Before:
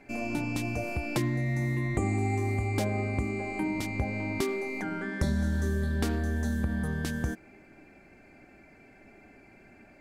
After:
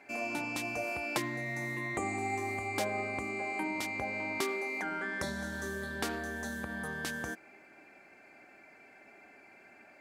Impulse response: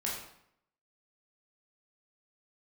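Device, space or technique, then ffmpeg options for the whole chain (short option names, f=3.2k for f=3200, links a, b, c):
filter by subtraction: -filter_complex "[0:a]asplit=2[a][b];[b]lowpass=1k,volume=-1[c];[a][c]amix=inputs=2:normalize=0"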